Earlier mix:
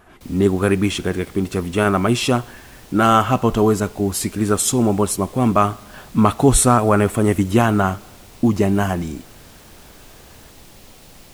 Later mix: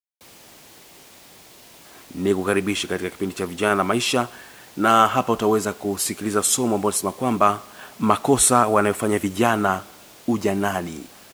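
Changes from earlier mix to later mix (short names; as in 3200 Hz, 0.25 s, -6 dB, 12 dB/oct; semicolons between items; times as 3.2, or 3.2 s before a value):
speech: entry +1.85 s; master: add HPF 400 Hz 6 dB/oct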